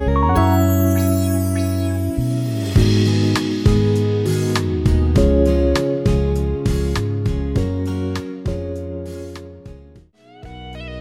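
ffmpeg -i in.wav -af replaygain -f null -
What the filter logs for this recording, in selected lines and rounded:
track_gain = +1.4 dB
track_peak = 0.516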